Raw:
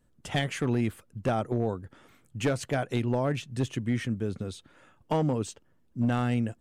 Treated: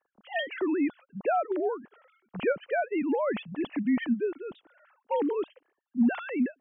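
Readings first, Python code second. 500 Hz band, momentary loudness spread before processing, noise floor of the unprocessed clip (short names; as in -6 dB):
+2.0 dB, 11 LU, -65 dBFS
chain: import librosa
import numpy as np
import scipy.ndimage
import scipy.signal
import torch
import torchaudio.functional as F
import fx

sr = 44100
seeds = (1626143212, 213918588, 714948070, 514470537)

y = fx.sine_speech(x, sr)
y = fx.env_lowpass(y, sr, base_hz=2100.0, full_db=-22.5)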